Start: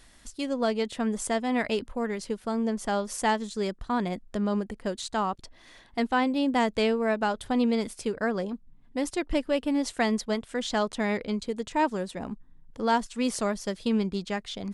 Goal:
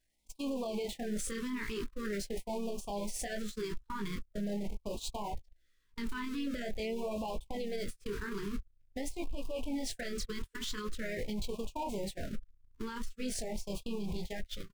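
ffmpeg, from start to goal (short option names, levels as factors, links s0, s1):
-filter_complex "[0:a]aeval=exprs='val(0)+0.5*0.0266*sgn(val(0))':c=same,asplit=2[s0][s1];[s1]asetrate=37084,aresample=44100,atempo=1.18921,volume=0.178[s2];[s0][s2]amix=inputs=2:normalize=0,flanger=delay=17.5:depth=7.7:speed=0.54,agate=range=0.00282:threshold=0.0251:ratio=16:detection=peak,asubboost=boost=7:cutoff=78,acompressor=threshold=0.0112:ratio=10,alimiter=level_in=6.68:limit=0.0631:level=0:latency=1:release=24,volume=0.15,afftfilt=real='re*(1-between(b*sr/1024,620*pow(1700/620,0.5+0.5*sin(2*PI*0.45*pts/sr))/1.41,620*pow(1700/620,0.5+0.5*sin(2*PI*0.45*pts/sr))*1.41))':imag='im*(1-between(b*sr/1024,620*pow(1700/620,0.5+0.5*sin(2*PI*0.45*pts/sr))/1.41,620*pow(1700/620,0.5+0.5*sin(2*PI*0.45*pts/sr))*1.41))':win_size=1024:overlap=0.75,volume=3.55"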